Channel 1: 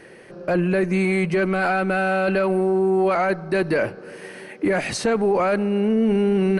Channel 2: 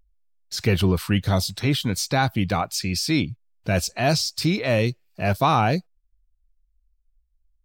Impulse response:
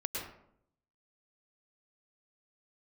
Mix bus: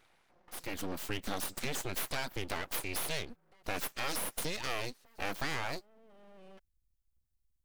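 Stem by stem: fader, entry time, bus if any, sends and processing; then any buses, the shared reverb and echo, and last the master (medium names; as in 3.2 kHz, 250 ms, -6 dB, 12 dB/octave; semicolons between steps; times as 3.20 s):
-17.0 dB, 0.00 s, no send, band-stop 530 Hz; compression 6:1, threshold -30 dBFS, peak gain reduction 13 dB; auto duck -11 dB, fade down 0.75 s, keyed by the second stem
0.65 s -15.5 dB -> 1.19 s -5 dB, 0.00 s, no send, treble shelf 4.7 kHz +9.5 dB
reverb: none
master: full-wave rectifier; bass shelf 270 Hz -6.5 dB; compression 4:1, threshold -32 dBFS, peak gain reduction 8.5 dB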